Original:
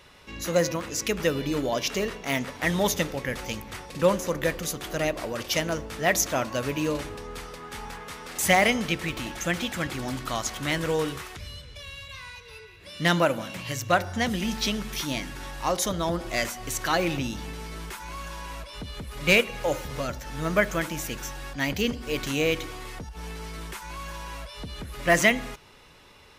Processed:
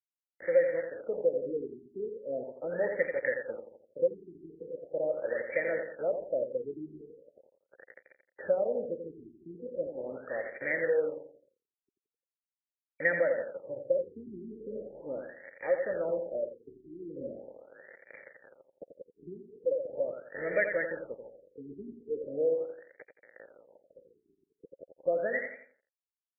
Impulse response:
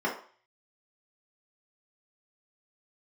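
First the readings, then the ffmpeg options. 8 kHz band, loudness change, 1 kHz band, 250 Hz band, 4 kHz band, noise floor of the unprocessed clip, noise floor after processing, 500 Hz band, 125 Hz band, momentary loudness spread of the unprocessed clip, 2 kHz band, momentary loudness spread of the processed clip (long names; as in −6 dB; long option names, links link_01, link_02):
below −40 dB, −6.0 dB, −18.0 dB, −15.0 dB, below −40 dB, −49 dBFS, below −85 dBFS, −2.0 dB, −21.5 dB, 16 LU, −9.0 dB, 20 LU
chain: -filter_complex "[0:a]acrusher=bits=4:mix=0:aa=0.000001,asplit=3[link_01][link_02][link_03];[link_01]bandpass=frequency=530:width_type=q:width=8,volume=0dB[link_04];[link_02]bandpass=frequency=1840:width_type=q:width=8,volume=-6dB[link_05];[link_03]bandpass=frequency=2480:width_type=q:width=8,volume=-9dB[link_06];[link_04][link_05][link_06]amix=inputs=3:normalize=0,bandreject=frequency=720:width=12,acompressor=threshold=-33dB:ratio=2,equalizer=frequency=2200:width_type=o:width=2.9:gain=4.5,asplit=2[link_07][link_08];[link_08]aecho=0:1:86|172|258|344:0.422|0.156|0.0577|0.0214[link_09];[link_07][link_09]amix=inputs=2:normalize=0,afftfilt=real='re*lt(b*sr/1024,410*pow(2400/410,0.5+0.5*sin(2*PI*0.4*pts/sr)))':imag='im*lt(b*sr/1024,410*pow(2400/410,0.5+0.5*sin(2*PI*0.4*pts/sr)))':win_size=1024:overlap=0.75,volume=5.5dB"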